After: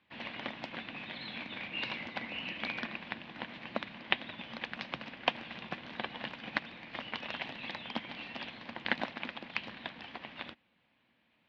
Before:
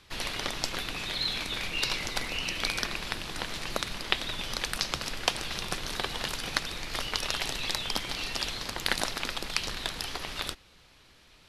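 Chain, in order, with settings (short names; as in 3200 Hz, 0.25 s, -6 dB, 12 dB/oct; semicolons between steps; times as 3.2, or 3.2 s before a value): speaker cabinet 160–2900 Hz, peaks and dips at 230 Hz +8 dB, 410 Hz -9 dB, 1300 Hz -7 dB; upward expander 1.5:1, over -50 dBFS; gain +1 dB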